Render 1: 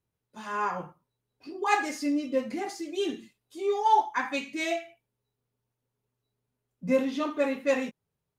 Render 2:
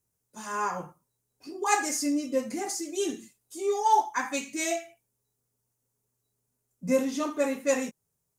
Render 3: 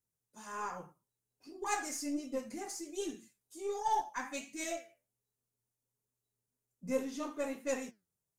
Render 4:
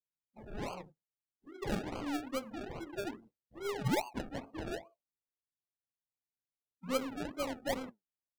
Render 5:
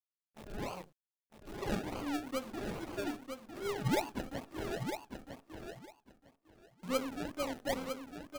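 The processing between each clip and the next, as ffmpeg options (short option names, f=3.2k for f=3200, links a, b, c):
-af "highshelf=f=5k:t=q:w=1.5:g=11"
-af "flanger=delay=2.9:depth=9.3:regen=79:speed=1.3:shape=triangular,aeval=exprs='0.2*(cos(1*acos(clip(val(0)/0.2,-1,1)))-cos(1*PI/2))+0.00501*(cos(8*acos(clip(val(0)/0.2,-1,1)))-cos(8*PI/2))':c=same,volume=-5.5dB"
-af "acrusher=samples=34:mix=1:aa=0.000001:lfo=1:lforange=20.4:lforate=2.4,afftdn=nr=23:nf=-54"
-af "acrusher=bits=9:dc=4:mix=0:aa=0.000001,aecho=1:1:954|1908|2862:0.447|0.0804|0.0145"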